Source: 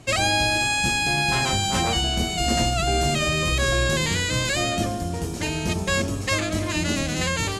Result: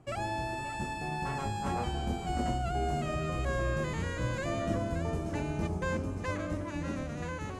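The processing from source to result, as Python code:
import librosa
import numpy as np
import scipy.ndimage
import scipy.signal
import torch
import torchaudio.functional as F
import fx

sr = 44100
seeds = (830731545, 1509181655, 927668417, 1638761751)

p1 = fx.doppler_pass(x, sr, speed_mps=18, closest_m=21.0, pass_at_s=3.37)
p2 = fx.high_shelf(p1, sr, hz=10000.0, db=-11.0)
p3 = p2 + fx.echo_single(p2, sr, ms=574, db=-12.0, dry=0)
p4 = fx.rider(p3, sr, range_db=4, speed_s=0.5)
p5 = fx.curve_eq(p4, sr, hz=(1200.0, 3800.0, 9400.0), db=(0, -15, -8))
y = p5 * 10.0 ** (-4.5 / 20.0)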